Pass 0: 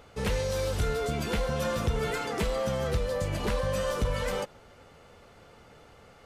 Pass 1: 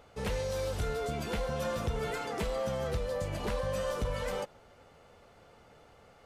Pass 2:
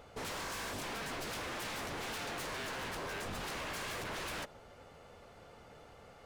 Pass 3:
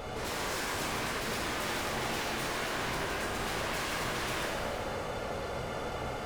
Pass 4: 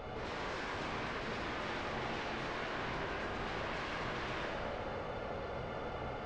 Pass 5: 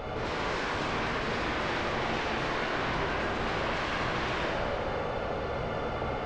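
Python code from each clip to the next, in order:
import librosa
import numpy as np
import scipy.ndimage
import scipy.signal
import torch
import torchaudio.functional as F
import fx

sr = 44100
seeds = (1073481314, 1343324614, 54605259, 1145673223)

y1 = fx.peak_eq(x, sr, hz=700.0, db=3.5, octaves=1.0)
y1 = F.gain(torch.from_numpy(y1), -5.5).numpy()
y2 = 10.0 ** (-38.0 / 20.0) * (np.abs((y1 / 10.0 ** (-38.0 / 20.0) + 3.0) % 4.0 - 2.0) - 1.0)
y2 = F.gain(torch.from_numpy(y2), 2.0).numpy()
y3 = fx.over_compress(y2, sr, threshold_db=-45.0, ratio=-0.5)
y3 = fx.rev_plate(y3, sr, seeds[0], rt60_s=2.9, hf_ratio=0.75, predelay_ms=0, drr_db=-4.0)
y3 = F.gain(torch.from_numpy(y3), 8.0).numpy()
y4 = scipy.ndimage.gaussian_filter1d(y3, 1.9, mode='constant')
y4 = F.gain(torch.from_numpy(y4), -4.5).numpy()
y5 = y4 + 10.0 ** (-7.5 / 20.0) * np.pad(y4, (int(75 * sr / 1000.0), 0))[:len(y4)]
y5 = F.gain(torch.from_numpy(y5), 8.0).numpy()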